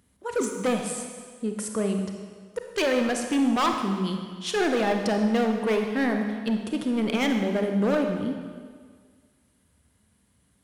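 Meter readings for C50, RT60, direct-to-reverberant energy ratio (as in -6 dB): 5.0 dB, 1.8 s, 4.0 dB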